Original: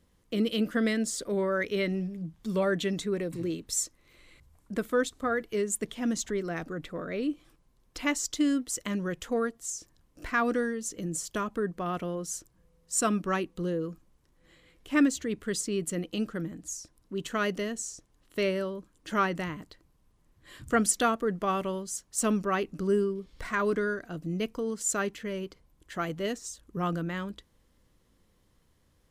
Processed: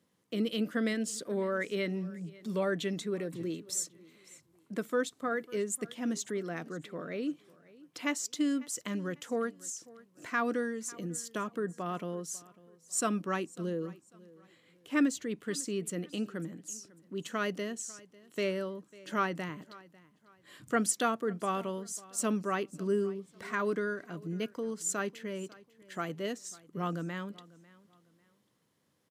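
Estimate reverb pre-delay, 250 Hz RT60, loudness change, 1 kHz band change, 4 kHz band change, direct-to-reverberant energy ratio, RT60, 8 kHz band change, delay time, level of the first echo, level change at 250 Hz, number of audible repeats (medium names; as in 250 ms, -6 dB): no reverb, no reverb, -4.0 dB, -4.0 dB, -4.0 dB, no reverb, no reverb, -4.0 dB, 547 ms, -21.5 dB, -4.0 dB, 2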